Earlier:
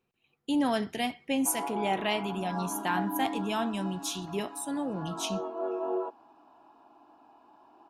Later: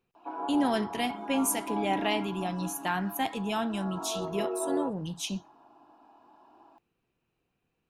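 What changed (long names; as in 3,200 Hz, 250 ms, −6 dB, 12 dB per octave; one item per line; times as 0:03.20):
speech: add low-shelf EQ 64 Hz +6.5 dB
background: entry −1.20 s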